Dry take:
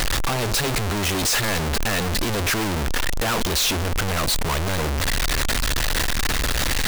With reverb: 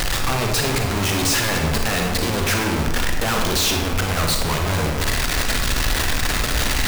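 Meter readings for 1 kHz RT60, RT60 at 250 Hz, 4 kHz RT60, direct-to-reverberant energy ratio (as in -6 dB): 1.1 s, 1.4 s, 0.75 s, 1.5 dB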